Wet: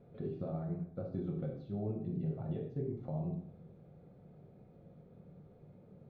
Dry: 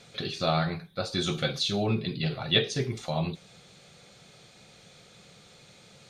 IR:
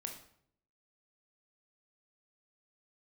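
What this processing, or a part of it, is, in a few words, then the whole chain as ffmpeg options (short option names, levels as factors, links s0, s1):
television next door: -filter_complex "[0:a]acompressor=threshold=0.02:ratio=5,lowpass=460[s0];[1:a]atrim=start_sample=2205[s1];[s0][s1]afir=irnorm=-1:irlink=0,volume=1.41"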